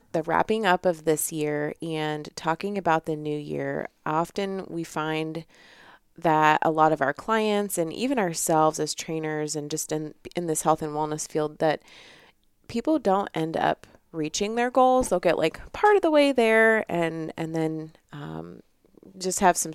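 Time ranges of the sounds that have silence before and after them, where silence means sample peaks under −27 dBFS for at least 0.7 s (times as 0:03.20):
0:06.25–0:11.75
0:12.70–0:18.41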